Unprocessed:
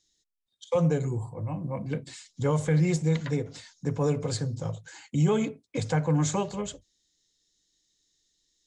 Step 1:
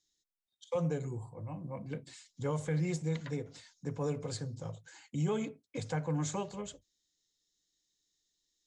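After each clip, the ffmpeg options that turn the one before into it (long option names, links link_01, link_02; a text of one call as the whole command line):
ffmpeg -i in.wav -af "lowshelf=frequency=140:gain=-3,volume=-8dB" out.wav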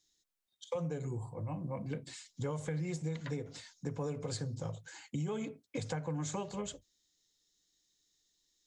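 ffmpeg -i in.wav -af "acompressor=threshold=-38dB:ratio=6,volume=4dB" out.wav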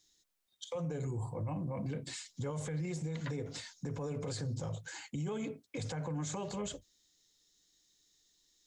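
ffmpeg -i in.wav -af "alimiter=level_in=12dB:limit=-24dB:level=0:latency=1:release=23,volume=-12dB,volume=5dB" out.wav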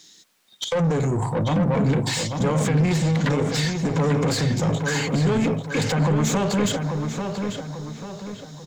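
ffmpeg -i in.wav -filter_complex "[0:a]equalizer=frequency=180:width_type=o:width=1.3:gain=12.5,asplit=2[link_01][link_02];[link_02]highpass=frequency=720:poles=1,volume=25dB,asoftclip=type=tanh:threshold=-19dB[link_03];[link_01][link_03]amix=inputs=2:normalize=0,lowpass=frequency=4800:poles=1,volume=-6dB,asplit=2[link_04][link_05];[link_05]adelay=841,lowpass=frequency=3300:poles=1,volume=-5.5dB,asplit=2[link_06][link_07];[link_07]adelay=841,lowpass=frequency=3300:poles=1,volume=0.44,asplit=2[link_08][link_09];[link_09]adelay=841,lowpass=frequency=3300:poles=1,volume=0.44,asplit=2[link_10][link_11];[link_11]adelay=841,lowpass=frequency=3300:poles=1,volume=0.44,asplit=2[link_12][link_13];[link_13]adelay=841,lowpass=frequency=3300:poles=1,volume=0.44[link_14];[link_04][link_06][link_08][link_10][link_12][link_14]amix=inputs=6:normalize=0,volume=5dB" out.wav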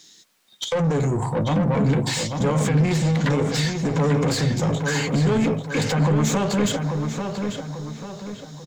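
ffmpeg -i in.wav -filter_complex "[0:a]asplit=2[link_01][link_02];[link_02]adelay=14,volume=-13.5dB[link_03];[link_01][link_03]amix=inputs=2:normalize=0" out.wav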